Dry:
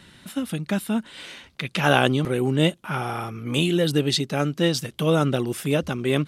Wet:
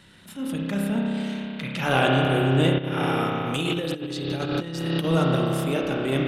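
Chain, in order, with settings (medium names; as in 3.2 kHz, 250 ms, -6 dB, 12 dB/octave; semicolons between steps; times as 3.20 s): spring tank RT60 3.4 s, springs 30 ms, chirp 25 ms, DRR -2 dB; 2.78–5.05 s: compressor with a negative ratio -21 dBFS, ratio -0.5; transient shaper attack -9 dB, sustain -5 dB; trim -3 dB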